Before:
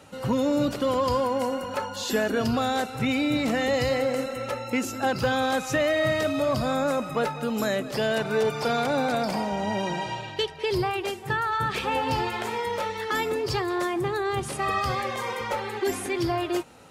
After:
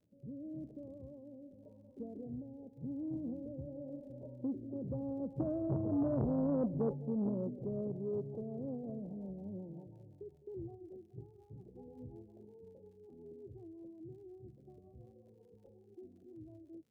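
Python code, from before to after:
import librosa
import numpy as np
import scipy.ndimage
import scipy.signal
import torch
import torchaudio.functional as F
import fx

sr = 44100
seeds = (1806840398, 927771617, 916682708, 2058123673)

y = fx.doppler_pass(x, sr, speed_mps=21, closest_m=14.0, pass_at_s=6.28)
y = fx.highpass(y, sr, hz=74.0, slope=6)
y = fx.vibrato(y, sr, rate_hz=0.34, depth_cents=14.0)
y = scipy.ndimage.gaussian_filter1d(y, 20.0, mode='constant')
y = fx.dmg_crackle(y, sr, seeds[0], per_s=89.0, level_db=-68.0)
y = fx.rotary_switch(y, sr, hz=0.9, then_hz=5.5, switch_at_s=6.06)
y = fx.transformer_sat(y, sr, knee_hz=370.0)
y = y * librosa.db_to_amplitude(3.5)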